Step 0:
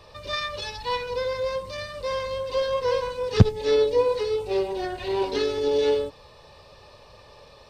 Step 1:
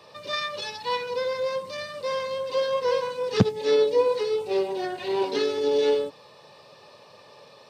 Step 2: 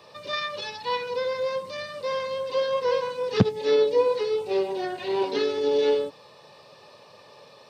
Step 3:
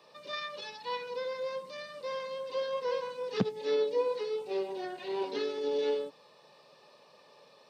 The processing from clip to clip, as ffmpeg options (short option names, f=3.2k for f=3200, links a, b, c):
-af "highpass=f=140:w=0.5412,highpass=f=140:w=1.3066"
-filter_complex "[0:a]acrossover=split=5800[a][b];[b]acompressor=threshold=-57dB:ratio=4:attack=1:release=60[c];[a][c]amix=inputs=2:normalize=0"
-af "highpass=f=150:w=0.5412,highpass=f=150:w=1.3066,volume=-8.5dB"